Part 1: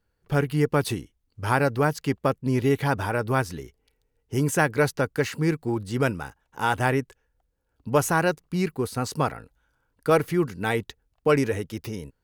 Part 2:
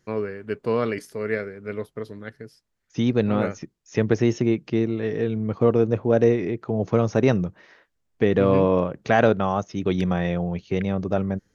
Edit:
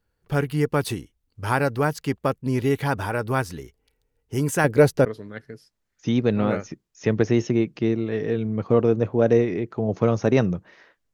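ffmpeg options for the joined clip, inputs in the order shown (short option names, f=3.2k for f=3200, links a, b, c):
-filter_complex "[0:a]asettb=1/sr,asplit=3[a][b][c];[a]atrim=end=4.644[d];[b]atrim=start=4.64:end=5.05,asetpts=PTS-STARTPTS,afade=t=in:d=0.004:c=qsin,afade=t=out:st=0.406:d=0.004:c=qsin,lowshelf=f=770:t=q:w=1.5:g=6[e];[c]atrim=start=5.046[f];[d][e]acrossfade=d=0.004:c1=hsin:c2=qsin[g];[g][f]acrossfade=d=0.004:c1=qsin:c2=hsin,apad=whole_dur=11.13,atrim=end=11.13,atrim=end=5.052[h];[1:a]atrim=start=1.958:end=8.04[i];[h][i]acrossfade=d=0.004:c1=hsin:c2=hsin"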